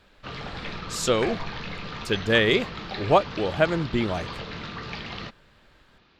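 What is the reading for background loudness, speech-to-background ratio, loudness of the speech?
-35.0 LUFS, 10.5 dB, -24.5 LUFS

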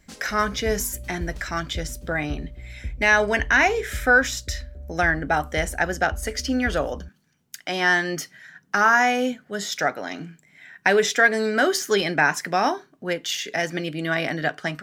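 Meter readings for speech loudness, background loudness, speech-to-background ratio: -22.5 LUFS, -38.0 LUFS, 15.5 dB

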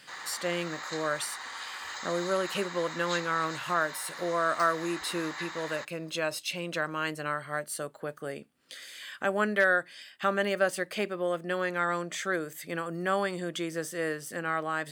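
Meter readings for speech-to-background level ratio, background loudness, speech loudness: 8.0 dB, -39.0 LUFS, -31.0 LUFS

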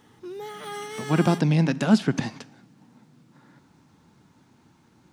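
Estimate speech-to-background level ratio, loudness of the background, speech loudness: 14.0 dB, -36.5 LUFS, -22.5 LUFS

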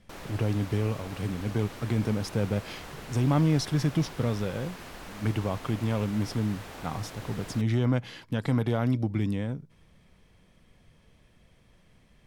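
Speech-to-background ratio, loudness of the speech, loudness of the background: 13.5 dB, -29.5 LUFS, -43.0 LUFS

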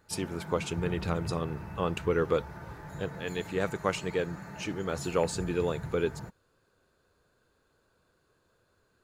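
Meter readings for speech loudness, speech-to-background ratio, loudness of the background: -32.5 LUFS, 9.5 dB, -42.0 LUFS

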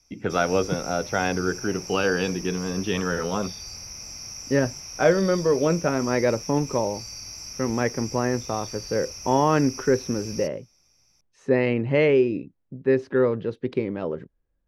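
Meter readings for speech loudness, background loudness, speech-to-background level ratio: -24.5 LUFS, -36.0 LUFS, 11.5 dB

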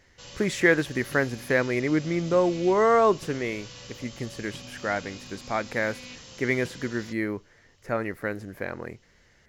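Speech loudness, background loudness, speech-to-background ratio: -26.5 LUFS, -43.0 LUFS, 16.5 dB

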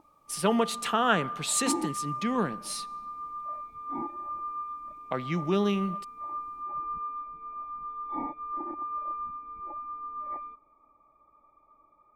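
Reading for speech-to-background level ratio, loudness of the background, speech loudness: 7.5 dB, -36.5 LUFS, -29.0 LUFS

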